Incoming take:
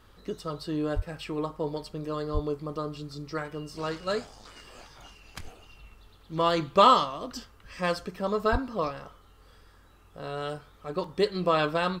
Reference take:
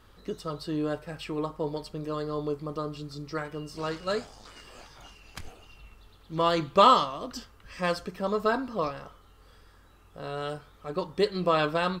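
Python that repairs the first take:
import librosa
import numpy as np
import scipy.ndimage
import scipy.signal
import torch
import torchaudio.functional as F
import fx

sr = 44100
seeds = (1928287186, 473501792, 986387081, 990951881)

y = fx.highpass(x, sr, hz=140.0, slope=24, at=(0.95, 1.07), fade=0.02)
y = fx.highpass(y, sr, hz=140.0, slope=24, at=(2.33, 2.45), fade=0.02)
y = fx.highpass(y, sr, hz=140.0, slope=24, at=(8.51, 8.63), fade=0.02)
y = fx.fix_interpolate(y, sr, at_s=(11.04,), length_ms=2.8)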